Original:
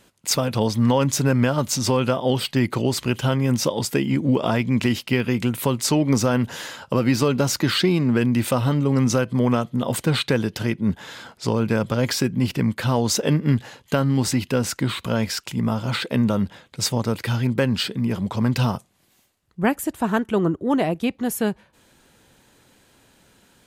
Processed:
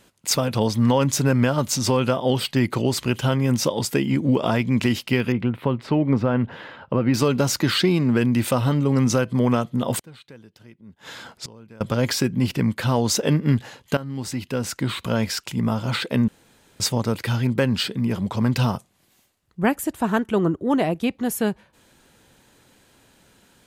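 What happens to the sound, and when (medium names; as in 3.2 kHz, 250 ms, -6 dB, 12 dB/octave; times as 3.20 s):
5.32–7.14 s: distance through air 440 m
9.99–11.81 s: inverted gate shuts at -22 dBFS, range -24 dB
13.97–15.07 s: fade in, from -15 dB
16.28–16.80 s: room tone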